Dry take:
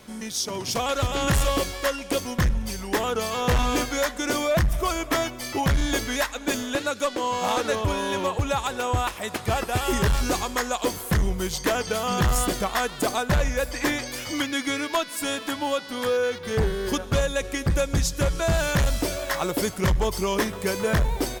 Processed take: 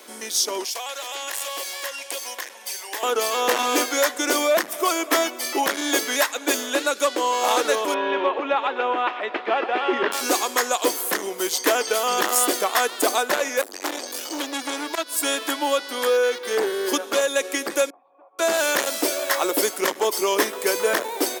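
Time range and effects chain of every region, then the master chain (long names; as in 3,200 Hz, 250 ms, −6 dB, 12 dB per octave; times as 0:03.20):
0:00.64–0:03.03: high-pass filter 790 Hz + downward compressor 3 to 1, threshold −32 dBFS + parametric band 1,300 Hz −9 dB 0.26 octaves
0:07.94–0:10.12: low-pass filter 3,000 Hz 24 dB per octave + single-tap delay 122 ms −12 dB
0:13.61–0:15.23: parametric band 2,100 Hz −10 dB 0.52 octaves + saturating transformer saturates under 1,500 Hz
0:17.90–0:18.39: formant resonators in series a + downward compressor 4 to 1, threshold −54 dBFS
whole clip: Butterworth high-pass 290 Hz 36 dB per octave; high-shelf EQ 8,500 Hz +7 dB; level +4 dB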